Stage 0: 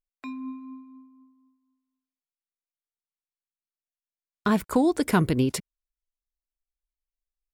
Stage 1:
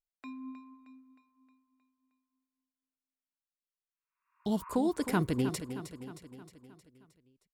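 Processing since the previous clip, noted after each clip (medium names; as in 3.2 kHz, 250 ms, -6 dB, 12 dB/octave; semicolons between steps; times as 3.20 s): spectral replace 3.86–4.71 s, 920–2800 Hz both; on a send: feedback delay 312 ms, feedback 55%, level -11 dB; on the sum: trim -8 dB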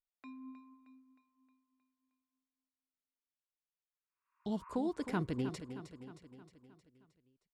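distance through air 70 m; trim -6 dB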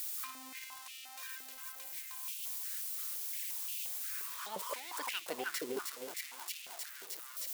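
zero-crossing glitches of -35 dBFS; flange 0.6 Hz, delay 0.4 ms, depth 9.5 ms, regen +64%; step-sequenced high-pass 5.7 Hz 410–2700 Hz; trim +8 dB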